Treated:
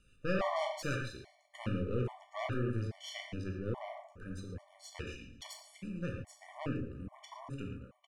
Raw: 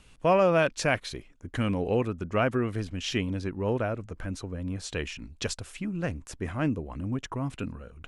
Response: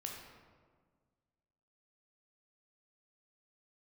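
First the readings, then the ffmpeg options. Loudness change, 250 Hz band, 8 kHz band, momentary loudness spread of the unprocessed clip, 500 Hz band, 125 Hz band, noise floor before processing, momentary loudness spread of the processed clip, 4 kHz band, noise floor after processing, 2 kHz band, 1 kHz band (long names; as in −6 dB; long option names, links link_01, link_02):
−10.0 dB, −10.0 dB, −12.5 dB, 12 LU, −12.0 dB, −7.5 dB, −55 dBFS, 14 LU, −10.0 dB, −66 dBFS, −10.5 dB, −10.5 dB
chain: -filter_complex "[0:a]aecho=1:1:114|228|342|456:0.15|0.0733|0.0359|0.0176,aeval=exprs='0.282*(cos(1*acos(clip(val(0)/0.282,-1,1)))-cos(1*PI/2))+0.0794*(cos(4*acos(clip(val(0)/0.282,-1,1)))-cos(4*PI/2))':channel_layout=same[link_01];[1:a]atrim=start_sample=2205,afade=type=out:start_time=0.2:duration=0.01,atrim=end_sample=9261[link_02];[link_01][link_02]afir=irnorm=-1:irlink=0,afftfilt=real='re*gt(sin(2*PI*1.2*pts/sr)*(1-2*mod(floor(b*sr/1024/590),2)),0)':imag='im*gt(sin(2*PI*1.2*pts/sr)*(1-2*mod(floor(b*sr/1024/590),2)),0)':win_size=1024:overlap=0.75,volume=-7dB"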